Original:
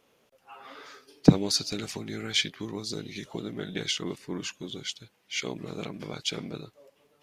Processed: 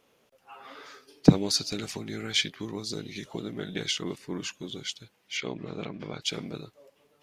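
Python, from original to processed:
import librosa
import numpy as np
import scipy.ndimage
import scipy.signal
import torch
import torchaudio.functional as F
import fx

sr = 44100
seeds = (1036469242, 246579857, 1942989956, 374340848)

y = fx.lowpass(x, sr, hz=3800.0, slope=12, at=(5.37, 6.22))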